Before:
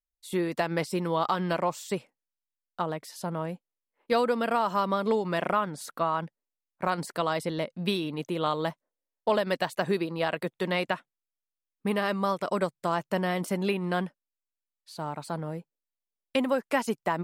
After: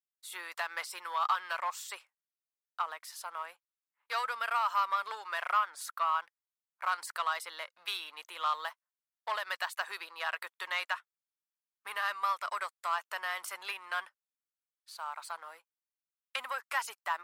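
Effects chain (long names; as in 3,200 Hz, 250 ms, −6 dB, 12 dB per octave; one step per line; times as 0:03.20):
high-shelf EQ 9,900 Hz +4.5 dB
leveller curve on the samples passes 1
four-pole ladder high-pass 980 Hz, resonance 40%
level +1.5 dB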